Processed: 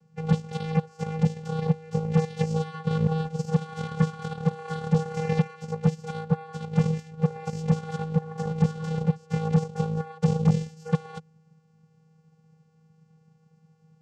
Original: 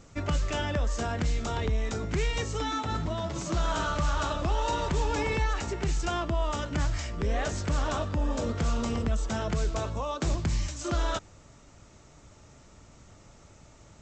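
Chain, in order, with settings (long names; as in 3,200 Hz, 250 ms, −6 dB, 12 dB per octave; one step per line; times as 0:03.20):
channel vocoder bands 8, square 159 Hz
harmonic generator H 7 −19 dB, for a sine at −18 dBFS
level +8.5 dB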